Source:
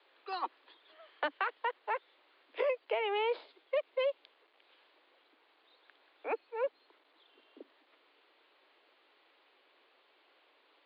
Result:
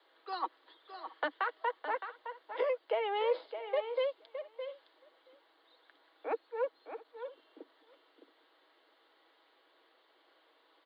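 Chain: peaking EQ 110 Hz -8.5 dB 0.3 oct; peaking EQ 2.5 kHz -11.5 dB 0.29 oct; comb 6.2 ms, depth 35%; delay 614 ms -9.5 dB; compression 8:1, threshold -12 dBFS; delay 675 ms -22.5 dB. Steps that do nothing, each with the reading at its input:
peaking EQ 110 Hz: input has nothing below 250 Hz; compression, threshold -12 dBFS: peak at its input -20.0 dBFS

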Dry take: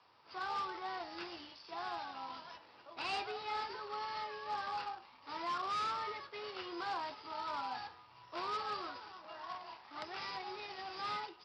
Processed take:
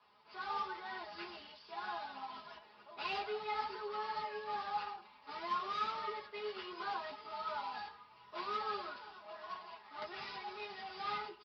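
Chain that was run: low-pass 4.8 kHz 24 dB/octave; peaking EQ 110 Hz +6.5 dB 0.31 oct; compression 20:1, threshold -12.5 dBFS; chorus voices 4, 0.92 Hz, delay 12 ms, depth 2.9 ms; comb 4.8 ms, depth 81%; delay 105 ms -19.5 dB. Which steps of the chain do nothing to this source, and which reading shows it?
compression, threshold -12.5 dBFS: peak at its input -27.5 dBFS

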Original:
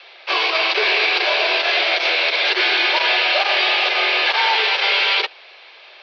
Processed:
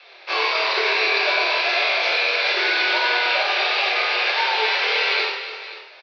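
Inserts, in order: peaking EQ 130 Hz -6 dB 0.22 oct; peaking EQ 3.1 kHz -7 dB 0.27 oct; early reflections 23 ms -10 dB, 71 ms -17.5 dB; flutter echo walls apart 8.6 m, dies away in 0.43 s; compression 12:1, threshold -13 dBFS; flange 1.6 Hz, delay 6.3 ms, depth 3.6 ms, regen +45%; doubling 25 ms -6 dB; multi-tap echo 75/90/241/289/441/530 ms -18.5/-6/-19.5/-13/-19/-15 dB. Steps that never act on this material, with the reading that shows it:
peaking EQ 130 Hz: input has nothing below 300 Hz

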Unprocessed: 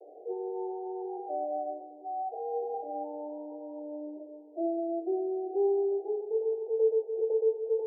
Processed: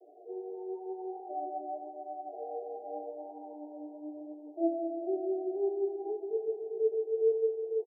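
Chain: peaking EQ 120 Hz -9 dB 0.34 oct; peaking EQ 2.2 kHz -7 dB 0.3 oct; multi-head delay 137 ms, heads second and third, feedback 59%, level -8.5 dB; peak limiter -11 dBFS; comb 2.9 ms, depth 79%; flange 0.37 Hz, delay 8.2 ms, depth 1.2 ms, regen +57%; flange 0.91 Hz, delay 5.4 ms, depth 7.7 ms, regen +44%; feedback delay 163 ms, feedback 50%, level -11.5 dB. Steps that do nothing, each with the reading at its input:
peaking EQ 120 Hz: input has nothing below 290 Hz; peaking EQ 2.2 kHz: input has nothing above 910 Hz; peak limiter -11 dBFS: peak at its input -16.5 dBFS

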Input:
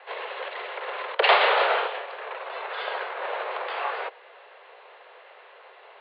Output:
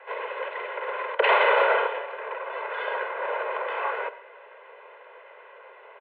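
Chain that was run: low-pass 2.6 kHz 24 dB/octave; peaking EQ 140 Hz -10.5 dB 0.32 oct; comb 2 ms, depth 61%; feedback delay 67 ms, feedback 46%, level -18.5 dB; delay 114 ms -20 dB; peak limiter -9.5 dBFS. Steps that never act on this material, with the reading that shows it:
peaking EQ 140 Hz: input has nothing below 320 Hz

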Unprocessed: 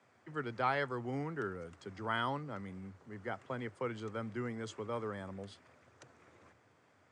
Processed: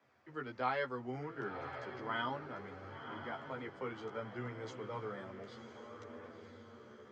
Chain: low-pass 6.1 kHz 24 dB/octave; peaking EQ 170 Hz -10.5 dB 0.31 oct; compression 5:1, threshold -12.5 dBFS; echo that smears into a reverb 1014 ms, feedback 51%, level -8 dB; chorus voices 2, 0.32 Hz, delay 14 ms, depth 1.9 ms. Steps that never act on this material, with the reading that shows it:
compression, threshold -12.5 dBFS: peak at its input -20.0 dBFS

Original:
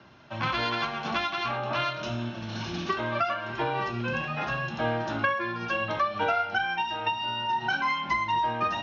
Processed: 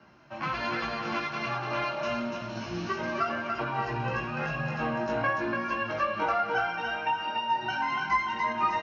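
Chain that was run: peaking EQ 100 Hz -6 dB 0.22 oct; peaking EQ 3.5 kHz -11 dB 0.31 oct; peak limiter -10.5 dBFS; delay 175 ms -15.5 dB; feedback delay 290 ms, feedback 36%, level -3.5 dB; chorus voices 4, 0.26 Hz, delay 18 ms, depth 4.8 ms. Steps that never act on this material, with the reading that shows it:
peak limiter -10.5 dBFS: peak at its input -12.5 dBFS

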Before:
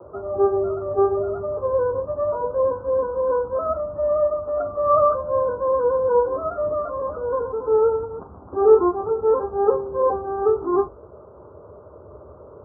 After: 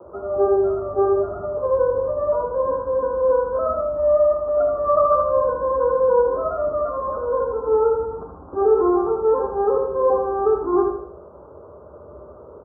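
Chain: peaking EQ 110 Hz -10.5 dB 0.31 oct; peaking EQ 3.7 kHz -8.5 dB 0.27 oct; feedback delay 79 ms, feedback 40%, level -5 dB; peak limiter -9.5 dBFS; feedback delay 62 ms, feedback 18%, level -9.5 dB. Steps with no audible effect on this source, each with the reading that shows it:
peaking EQ 3.7 kHz: input has nothing above 1.4 kHz

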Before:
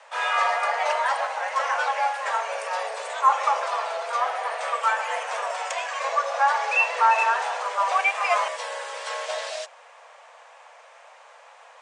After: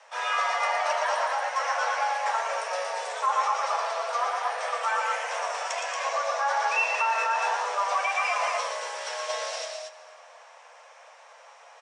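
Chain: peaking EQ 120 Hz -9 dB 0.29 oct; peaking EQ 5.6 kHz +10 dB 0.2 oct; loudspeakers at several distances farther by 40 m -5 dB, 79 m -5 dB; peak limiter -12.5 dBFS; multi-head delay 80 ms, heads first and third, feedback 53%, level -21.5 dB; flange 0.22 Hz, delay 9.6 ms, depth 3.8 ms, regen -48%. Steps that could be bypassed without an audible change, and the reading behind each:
peaking EQ 120 Hz: input has nothing below 400 Hz

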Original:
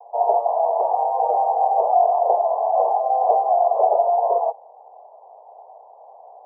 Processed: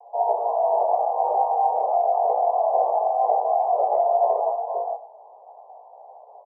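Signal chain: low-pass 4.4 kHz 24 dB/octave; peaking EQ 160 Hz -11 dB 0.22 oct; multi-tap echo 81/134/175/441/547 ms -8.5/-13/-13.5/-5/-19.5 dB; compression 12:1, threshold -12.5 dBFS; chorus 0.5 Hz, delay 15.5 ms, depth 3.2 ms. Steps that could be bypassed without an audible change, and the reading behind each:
low-pass 4.4 kHz: input has nothing above 1.1 kHz; peaking EQ 160 Hz: input has nothing below 380 Hz

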